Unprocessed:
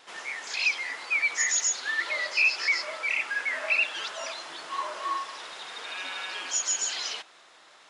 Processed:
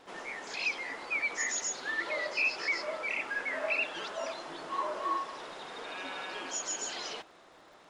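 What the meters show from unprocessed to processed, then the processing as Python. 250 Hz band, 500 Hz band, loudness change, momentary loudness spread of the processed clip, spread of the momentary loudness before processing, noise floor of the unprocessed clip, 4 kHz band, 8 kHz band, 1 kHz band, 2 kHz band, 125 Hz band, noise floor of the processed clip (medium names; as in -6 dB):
+6.5 dB, +3.0 dB, -6.5 dB, 11 LU, 13 LU, -55 dBFS, -8.0 dB, -8.5 dB, -1.5 dB, -6.0 dB, no reading, -57 dBFS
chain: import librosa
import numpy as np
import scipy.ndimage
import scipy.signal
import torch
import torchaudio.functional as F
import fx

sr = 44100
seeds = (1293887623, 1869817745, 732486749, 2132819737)

y = fx.dmg_crackle(x, sr, seeds[0], per_s=84.0, level_db=-50.0)
y = fx.tilt_shelf(y, sr, db=9.0, hz=880.0)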